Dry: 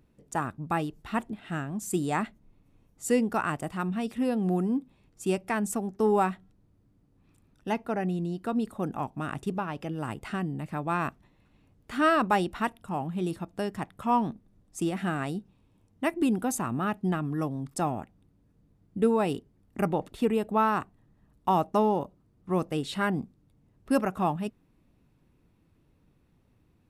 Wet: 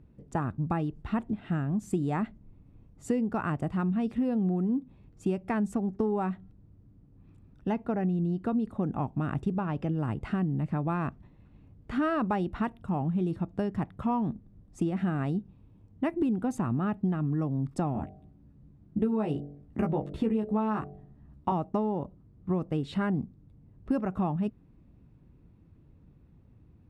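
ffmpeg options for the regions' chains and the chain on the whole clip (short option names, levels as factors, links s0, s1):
-filter_complex "[0:a]asettb=1/sr,asplit=3[s0][s1][s2];[s0]atrim=end=17.934[s3];[s1]atrim=start=17.93:end=21.52,asetpts=PTS-STARTPTS,afade=t=in:d=0.004:c=qsin,afade=t=out:st=3.586:d=0.004:c=qsin,asplit=2[s4][s5];[s5]adelay=14,volume=0.708[s6];[s4][s6]amix=inputs=2:normalize=0,atrim=end_sample=158319,bandreject=f=47.81:t=h:w=4,bandreject=f=95.62:t=h:w=4,bandreject=f=143.43:t=h:w=4,bandreject=f=191.24:t=h:w=4,bandreject=f=239.05:t=h:w=4,bandreject=f=286.86:t=h:w=4,bandreject=f=334.67:t=h:w=4,bandreject=f=382.48:t=h:w=4,bandreject=f=430.29:t=h:w=4,bandreject=f=478.1:t=h:w=4,bandreject=f=525.91:t=h:w=4,bandreject=f=573.72:t=h:w=4,bandreject=f=621.53:t=h:w=4,bandreject=f=669.34:t=h:w=4,bandreject=f=717.15:t=h:w=4,bandreject=f=764.96:t=h:w=4[s7];[s2]atrim=start=21.516[s8];[s3][s7]acrossfade=d=0.004:c1=hsin:c2=qsin[s9];[s9][s8]acrossfade=d=0.004:c1=qsin:c2=hsin,highpass=f=99:p=1,aemphasis=mode=reproduction:type=riaa,acompressor=threshold=0.0562:ratio=6"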